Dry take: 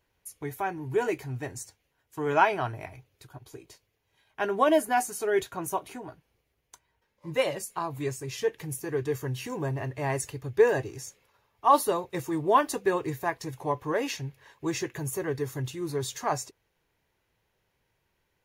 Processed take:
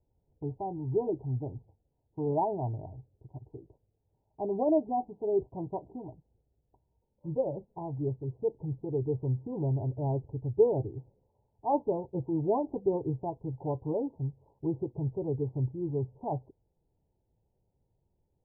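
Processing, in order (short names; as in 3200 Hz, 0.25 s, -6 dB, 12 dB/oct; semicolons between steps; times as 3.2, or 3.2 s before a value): steep low-pass 920 Hz 96 dB/oct; low shelf 340 Hz +11.5 dB; gain -7 dB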